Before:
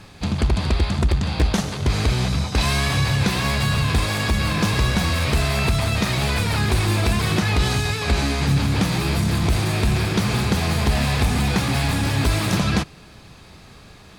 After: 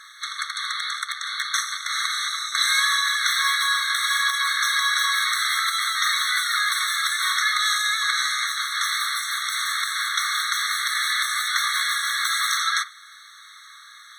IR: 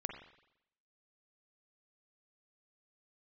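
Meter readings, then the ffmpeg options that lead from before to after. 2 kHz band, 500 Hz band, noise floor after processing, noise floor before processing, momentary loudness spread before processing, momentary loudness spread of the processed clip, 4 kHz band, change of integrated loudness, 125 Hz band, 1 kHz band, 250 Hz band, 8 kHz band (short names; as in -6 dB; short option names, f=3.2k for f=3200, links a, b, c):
+5.0 dB, under -40 dB, -46 dBFS, -45 dBFS, 2 LU, 6 LU, +4.5 dB, -1.0 dB, under -40 dB, +1.5 dB, under -40 dB, +5.0 dB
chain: -filter_complex "[0:a]asplit=2[a][b];[1:a]atrim=start_sample=2205,atrim=end_sample=3969,lowshelf=f=210:g=-11[c];[b][c]afir=irnorm=-1:irlink=0,volume=-2dB[d];[a][d]amix=inputs=2:normalize=0,afftfilt=real='re*eq(mod(floor(b*sr/1024/1100),2),1)':imag='im*eq(mod(floor(b*sr/1024/1100),2),1)':win_size=1024:overlap=0.75,volume=3dB"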